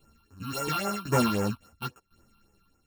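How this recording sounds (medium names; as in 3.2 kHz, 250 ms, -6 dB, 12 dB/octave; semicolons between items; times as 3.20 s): a buzz of ramps at a fixed pitch in blocks of 32 samples; phasing stages 6, 3.7 Hz, lowest notch 480–4100 Hz; tremolo saw down 0.95 Hz, depth 85%; a shimmering, thickened sound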